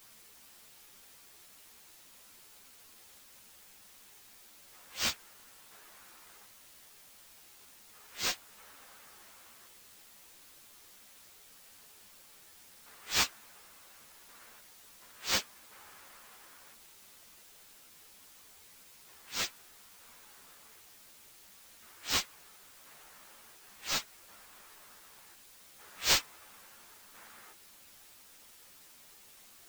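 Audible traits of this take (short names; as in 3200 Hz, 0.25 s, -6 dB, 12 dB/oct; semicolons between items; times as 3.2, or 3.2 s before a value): aliases and images of a low sample rate 11000 Hz, jitter 0%; tremolo saw down 0.7 Hz, depth 65%; a quantiser's noise floor 10-bit, dither triangular; a shimmering, thickened sound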